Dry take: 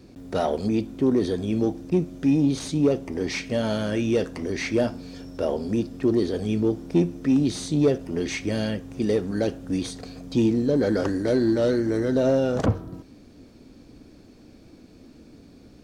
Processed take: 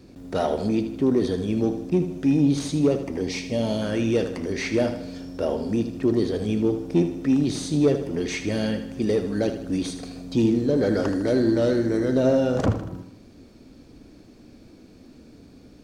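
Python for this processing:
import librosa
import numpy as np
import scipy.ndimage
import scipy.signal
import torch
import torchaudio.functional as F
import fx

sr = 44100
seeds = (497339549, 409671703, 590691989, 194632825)

y = fx.peak_eq(x, sr, hz=1500.0, db=-13.5, octaves=0.68, at=(3.21, 3.82))
y = fx.echo_feedback(y, sr, ms=78, feedback_pct=51, wet_db=-10)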